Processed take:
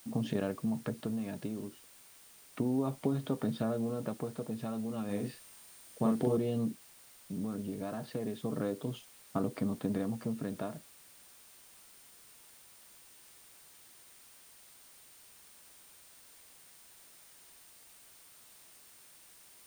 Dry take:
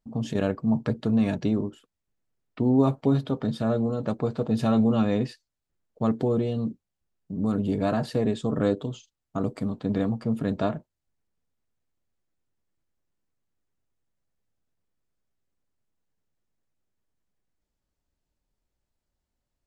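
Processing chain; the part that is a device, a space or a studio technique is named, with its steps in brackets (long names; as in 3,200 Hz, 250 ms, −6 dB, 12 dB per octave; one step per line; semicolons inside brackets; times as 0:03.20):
medium wave at night (band-pass filter 120–3,700 Hz; downward compressor, threshold −28 dBFS, peak gain reduction 12.5 dB; amplitude tremolo 0.32 Hz, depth 55%; steady tone 9,000 Hz −62 dBFS; white noise bed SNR 20 dB)
0:05.05–0:06.37: double-tracking delay 40 ms −3 dB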